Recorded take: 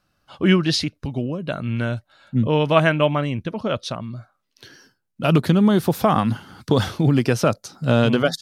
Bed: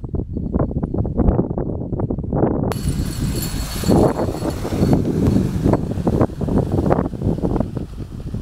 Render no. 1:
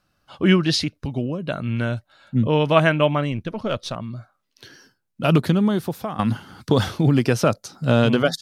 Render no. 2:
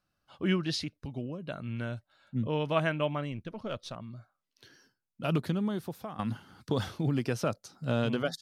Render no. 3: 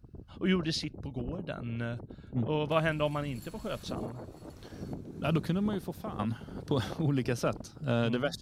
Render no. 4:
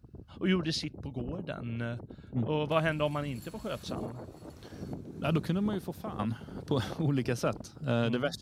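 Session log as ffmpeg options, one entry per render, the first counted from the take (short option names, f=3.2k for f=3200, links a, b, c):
-filter_complex "[0:a]asettb=1/sr,asplit=3[a][b][c];[a]atrim=end=3.324[d];[b]atrim=start=3.32:end=3.96,asetpts=PTS-STARTPTS,afade=t=in:d=0.004:c=qsin,afade=t=out:st=0.636:d=0.004:c=qsin,aeval=exprs='if(lt(val(0),0),0.708*val(0),val(0))':c=same[e];[c]atrim=start=3.956[f];[d][e]acrossfade=d=0.004:c1=hsin:c2=qsin[g];[g][f]acrossfade=d=0.004:c1=qsin:c2=hsin,asplit=2[h][i];[h]atrim=end=6.19,asetpts=PTS-STARTPTS,afade=t=out:st=5.33:d=0.86:silence=0.158489[j];[i]atrim=start=6.19,asetpts=PTS-STARTPTS,afade=t=in:d=0.004:c=hsin:silence=0.158489[k];[j][k]concat=n=2:v=0:a=1"
-af "volume=-12dB"
-filter_complex "[1:a]volume=-25dB[a];[0:a][a]amix=inputs=2:normalize=0"
-af "highpass=49"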